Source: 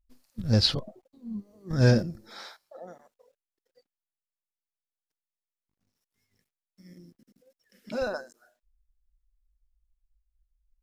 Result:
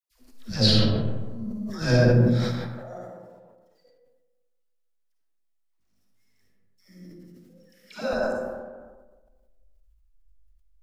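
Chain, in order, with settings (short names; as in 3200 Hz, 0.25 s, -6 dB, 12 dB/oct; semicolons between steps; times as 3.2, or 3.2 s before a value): dispersion lows, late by 0.111 s, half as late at 740 Hz; reverb RT60 1.4 s, pre-delay 15 ms, DRR -3 dB; sustainer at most 38 dB/s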